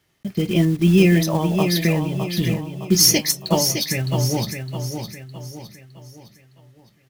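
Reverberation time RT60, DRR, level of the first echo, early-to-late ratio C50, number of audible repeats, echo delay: none, none, -7.0 dB, none, 4, 0.611 s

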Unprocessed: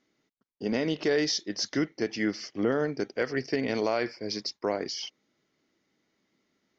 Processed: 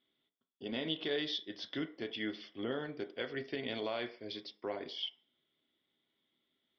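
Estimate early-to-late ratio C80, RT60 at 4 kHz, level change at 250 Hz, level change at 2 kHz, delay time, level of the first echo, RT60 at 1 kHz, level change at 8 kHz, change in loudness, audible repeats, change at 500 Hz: 20.0 dB, 0.45 s, -11.0 dB, -8.5 dB, none, none, 0.50 s, n/a, -9.5 dB, none, -11.0 dB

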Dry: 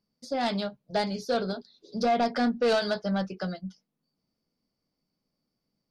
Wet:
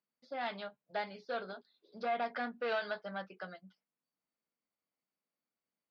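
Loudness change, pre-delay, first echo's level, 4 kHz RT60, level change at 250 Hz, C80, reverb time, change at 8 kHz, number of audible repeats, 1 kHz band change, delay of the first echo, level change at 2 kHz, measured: -11.0 dB, none, none, none, -18.5 dB, none, none, under -25 dB, none, -9.0 dB, none, -5.0 dB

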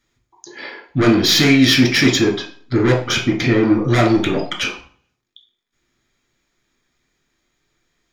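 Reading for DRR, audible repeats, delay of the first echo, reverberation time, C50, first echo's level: 0.0 dB, none, none, 0.45 s, 9.0 dB, none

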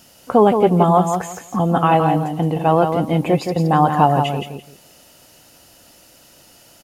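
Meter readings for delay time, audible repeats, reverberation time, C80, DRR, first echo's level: 0.169 s, 3, none, none, none, -6.5 dB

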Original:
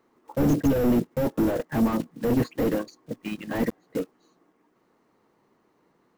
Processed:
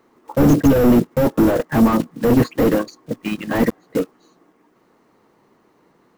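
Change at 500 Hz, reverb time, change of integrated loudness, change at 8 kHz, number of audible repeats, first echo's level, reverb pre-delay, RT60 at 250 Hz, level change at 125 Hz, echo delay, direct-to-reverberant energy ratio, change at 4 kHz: +8.5 dB, none, +8.5 dB, +8.5 dB, none, none, none, none, +8.5 dB, none, none, +8.5 dB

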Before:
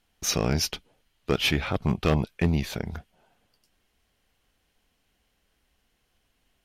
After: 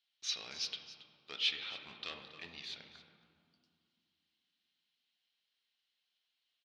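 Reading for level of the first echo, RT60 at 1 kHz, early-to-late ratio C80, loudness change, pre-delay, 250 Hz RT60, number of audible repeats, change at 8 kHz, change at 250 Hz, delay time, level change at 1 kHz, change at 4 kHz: -15.5 dB, 2.3 s, 7.0 dB, -13.0 dB, 4 ms, 3.6 s, 1, -15.5 dB, -33.0 dB, 0.275 s, -20.0 dB, -6.0 dB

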